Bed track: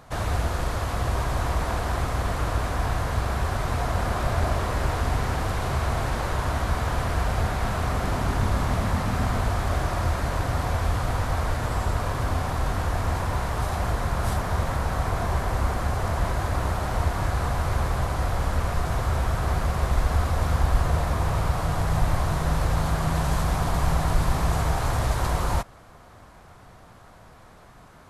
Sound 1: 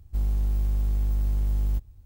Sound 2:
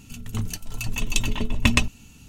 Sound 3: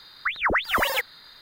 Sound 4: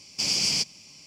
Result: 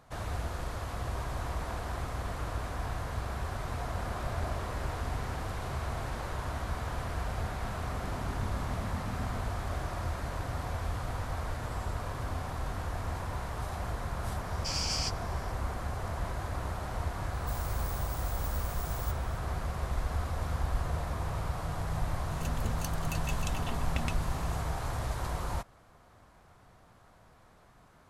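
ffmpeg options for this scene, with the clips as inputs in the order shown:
ffmpeg -i bed.wav -i cue0.wav -i cue1.wav -i cue2.wav -i cue3.wav -filter_complex "[0:a]volume=-10dB[link_01];[4:a]asplit=2[link_02][link_03];[link_03]adelay=13,volume=-4dB[link_04];[link_02][link_04]amix=inputs=2:normalize=0[link_05];[1:a]aexciter=amount=15.1:drive=3.3:freq=2900[link_06];[2:a]acompressor=threshold=-30dB:ratio=6:attack=3.2:release=140:knee=1:detection=peak[link_07];[link_05]atrim=end=1.06,asetpts=PTS-STARTPTS,volume=-11dB,afade=type=in:duration=0.004:curve=hsin,afade=type=out:start_time=1.056:duration=0.004:curve=hsin,adelay=14460[link_08];[link_06]atrim=end=2.05,asetpts=PTS-STARTPTS,volume=-16.5dB,afade=type=in:duration=0.004:curve=hsin,afade=type=out:start_time=2.046:duration=0.004:curve=hsin,adelay=17330[link_09];[link_07]atrim=end=2.28,asetpts=PTS-STARTPTS,volume=-2.5dB,afade=type=in:duration=0.004:curve=hsin,afade=type=out:start_time=2.276:duration=0.004:curve=hsin,adelay=22310[link_10];[link_01][link_08][link_09][link_10]amix=inputs=4:normalize=0" out.wav

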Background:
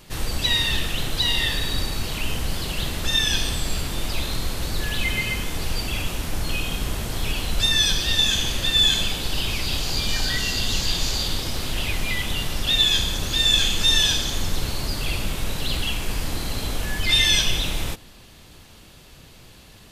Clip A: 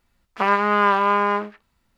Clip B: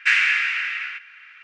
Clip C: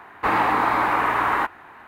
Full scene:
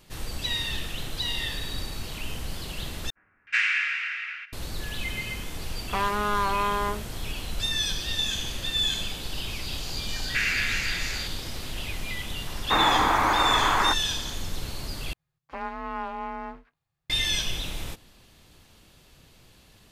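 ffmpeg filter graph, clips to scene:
ffmpeg -i bed.wav -i cue0.wav -i cue1.wav -i cue2.wav -filter_complex "[2:a]asplit=2[link_01][link_02];[1:a]asplit=2[link_03][link_04];[0:a]volume=-8dB[link_05];[link_01]acrossover=split=540[link_06][link_07];[link_07]adelay=370[link_08];[link_06][link_08]amix=inputs=2:normalize=0[link_09];[link_03]asoftclip=type=hard:threshold=-13dB[link_10];[link_02]alimiter=limit=-10.5dB:level=0:latency=1:release=71[link_11];[link_04]afreqshift=-170[link_12];[link_05]asplit=3[link_13][link_14][link_15];[link_13]atrim=end=3.104[link_16];[link_09]atrim=end=1.43,asetpts=PTS-STARTPTS,volume=-6dB[link_17];[link_14]atrim=start=4.526:end=15.134[link_18];[link_12]atrim=end=1.97,asetpts=PTS-STARTPTS,volume=-15.5dB[link_19];[link_15]atrim=start=17.096[link_20];[link_10]atrim=end=1.97,asetpts=PTS-STARTPTS,volume=-6dB,afade=type=in:duration=0.004:curve=hsin,afade=type=out:start_time=1.966:duration=0.004:curve=hsin,adelay=243873S[link_21];[link_11]atrim=end=1.43,asetpts=PTS-STARTPTS,volume=-6.5dB,afade=type=in:duration=0.004:curve=hsin,afade=type=out:start_time=1.426:duration=0.004:curve=hsin,adelay=10290[link_22];[3:a]atrim=end=1.87,asetpts=PTS-STARTPTS,volume=-2dB,afade=type=in:duration=0.004:curve=hsin,afade=type=out:start_time=1.866:duration=0.004:curve=hsin,adelay=12470[link_23];[link_16][link_17]acrossfade=duration=0.004:curve1=hsin:curve2=hsin[link_24];[link_24][link_18]acrossfade=duration=0.004:curve1=hsin:curve2=hsin[link_25];[link_25][link_19]acrossfade=duration=0.004:curve1=hsin:curve2=hsin[link_26];[link_26][link_20]acrossfade=duration=0.004:curve1=hsin:curve2=hsin[link_27];[link_27][link_21][link_22][link_23]amix=inputs=4:normalize=0" out.wav

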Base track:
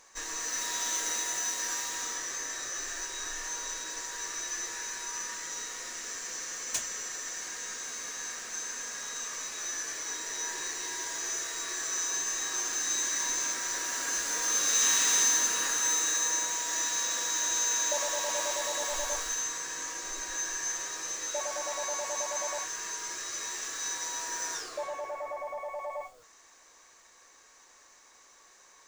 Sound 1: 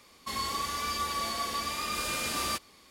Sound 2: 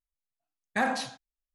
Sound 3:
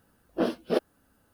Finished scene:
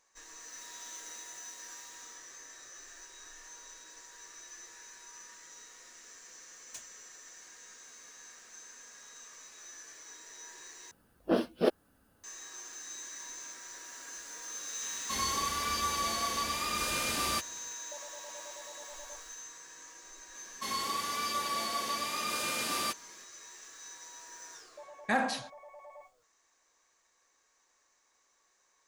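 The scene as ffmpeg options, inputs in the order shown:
ffmpeg -i bed.wav -i cue0.wav -i cue1.wav -i cue2.wav -filter_complex "[1:a]asplit=2[link_01][link_02];[0:a]volume=-14dB[link_03];[link_02]highpass=160[link_04];[link_03]asplit=2[link_05][link_06];[link_05]atrim=end=10.914[link_07];[3:a]atrim=end=1.33,asetpts=PTS-STARTPTS,volume=-1.5dB[link_08];[link_06]atrim=start=12.236[link_09];[link_01]atrim=end=2.9,asetpts=PTS-STARTPTS,volume=-0.5dB,afade=type=in:duration=0.004:curve=hsin,afade=type=out:start_time=2.896:duration=0.004:curve=hsin,adelay=14830[link_10];[link_04]atrim=end=2.9,asetpts=PTS-STARTPTS,volume=-1.5dB,afade=type=in:duration=0.004:curve=hsin,afade=type=out:start_time=2.896:duration=0.004:curve=hsin,adelay=20350[link_11];[2:a]atrim=end=1.54,asetpts=PTS-STARTPTS,volume=-2dB,afade=type=in:duration=0.004:curve=hsin,afade=type=out:start_time=1.536:duration=0.004:curve=hsin,adelay=24330[link_12];[link_07][link_08]acrossfade=duration=0.004:curve1=hsin:curve2=hsin[link_13];[link_13][link_09]acrossfade=duration=0.004:curve1=hsin:curve2=hsin[link_14];[link_14][link_10][link_11][link_12]amix=inputs=4:normalize=0" out.wav

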